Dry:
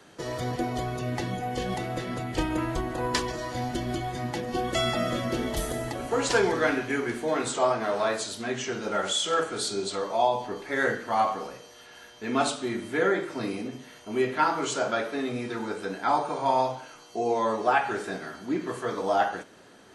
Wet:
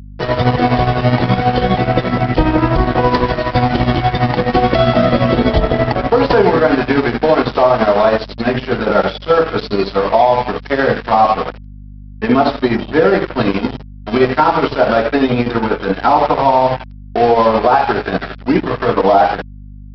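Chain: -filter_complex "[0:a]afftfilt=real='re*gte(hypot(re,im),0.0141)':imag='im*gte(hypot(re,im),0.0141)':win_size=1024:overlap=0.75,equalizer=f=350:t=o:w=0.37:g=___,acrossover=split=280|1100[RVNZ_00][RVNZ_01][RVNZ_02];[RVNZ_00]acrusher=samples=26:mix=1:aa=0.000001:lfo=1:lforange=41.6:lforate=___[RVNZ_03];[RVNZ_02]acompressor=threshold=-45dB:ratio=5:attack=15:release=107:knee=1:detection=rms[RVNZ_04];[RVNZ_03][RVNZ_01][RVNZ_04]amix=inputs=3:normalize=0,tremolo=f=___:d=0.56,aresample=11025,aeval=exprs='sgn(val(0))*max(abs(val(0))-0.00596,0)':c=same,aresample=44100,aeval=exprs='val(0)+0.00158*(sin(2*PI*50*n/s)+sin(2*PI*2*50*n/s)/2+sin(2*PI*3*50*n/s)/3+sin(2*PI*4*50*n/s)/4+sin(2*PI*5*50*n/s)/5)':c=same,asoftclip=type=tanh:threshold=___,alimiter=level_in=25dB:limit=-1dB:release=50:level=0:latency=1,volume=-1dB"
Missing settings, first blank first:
-6, 0.3, 12, -16.5dB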